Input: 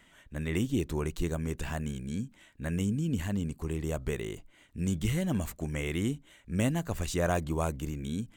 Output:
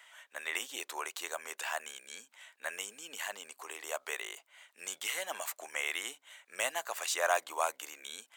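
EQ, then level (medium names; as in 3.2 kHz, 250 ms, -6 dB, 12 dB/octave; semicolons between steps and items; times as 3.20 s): high-pass 700 Hz 24 dB/octave; +4.5 dB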